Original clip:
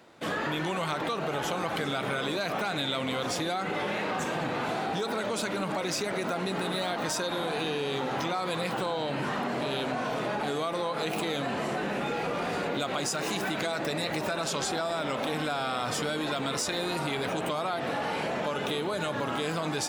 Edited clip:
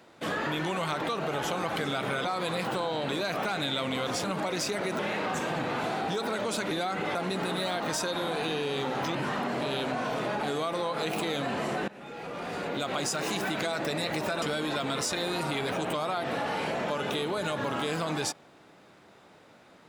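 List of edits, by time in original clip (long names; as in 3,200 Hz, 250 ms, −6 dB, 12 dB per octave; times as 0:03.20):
0:03.40–0:03.84: swap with 0:05.56–0:06.31
0:08.31–0:09.15: move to 0:02.25
0:11.88–0:12.98: fade in, from −20.5 dB
0:14.42–0:15.98: remove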